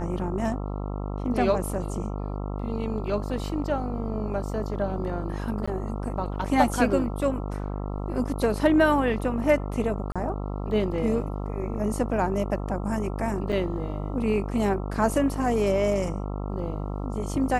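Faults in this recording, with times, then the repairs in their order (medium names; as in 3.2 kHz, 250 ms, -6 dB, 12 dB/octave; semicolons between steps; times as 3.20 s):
buzz 50 Hz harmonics 27 -31 dBFS
5.66–5.67 s: dropout 15 ms
10.12–10.16 s: dropout 36 ms
13.52–13.53 s: dropout 5.4 ms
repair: de-hum 50 Hz, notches 27; interpolate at 5.66 s, 15 ms; interpolate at 10.12 s, 36 ms; interpolate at 13.52 s, 5.4 ms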